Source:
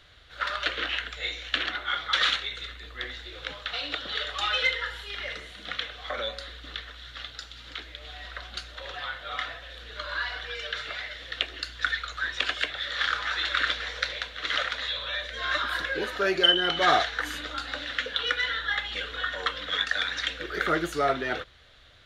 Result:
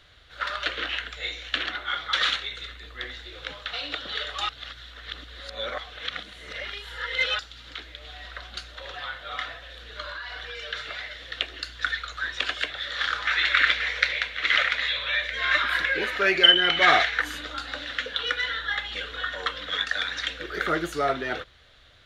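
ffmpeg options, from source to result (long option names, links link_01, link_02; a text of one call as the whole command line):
ffmpeg -i in.wav -filter_complex "[0:a]asettb=1/sr,asplit=3[link_01][link_02][link_03];[link_01]atrim=end=10.094[link_04];[link_02]atrim=start=10.09:end=10.67,asetpts=PTS-STARTPTS,afade=type=in:duration=0.004:curve=qsin,afade=type=out:start_time=0.576:duration=0.004:curve=qsin,acompressor=threshold=-32dB:ratio=10:attack=3.2:release=140:knee=1:detection=peak[link_05];[link_03]atrim=start=10.666[link_06];[link_04][link_05]acrossfade=duration=0.004:curve1=hsin:curve2=qsin[link_07];[link_07][link_06]acrossfade=duration=0.004:curve1=qsin:curve2=hsin,asettb=1/sr,asplit=3[link_08][link_09][link_10];[link_08]atrim=end=13.274[link_11];[link_09]atrim=start=13.27:end=17.22,asetpts=PTS-STARTPTS,afade=type=in:duration=0.004:curve=qsin,afade=type=out:start_time=3.946:duration=0.004:curve=qsin,equalizer=frequency=2200:width=1.9:gain=12[link_12];[link_10]atrim=start=17.216[link_13];[link_11][link_12]acrossfade=duration=0.004:curve1=hsin:curve2=qsin[link_14];[link_14][link_13]acrossfade=duration=0.004:curve1=qsin:curve2=hsin,asplit=3[link_15][link_16][link_17];[link_15]atrim=end=4.492[link_18];[link_16]atrim=start=4.488:end=7.392,asetpts=PTS-STARTPTS,areverse[link_19];[link_17]atrim=start=7.388[link_20];[link_18][link_19]acrossfade=duration=0.004:curve1=hsin:curve2=hsin[link_21];[link_21][link_20]acrossfade=duration=0.004:curve1=hsin:curve2=hsin" out.wav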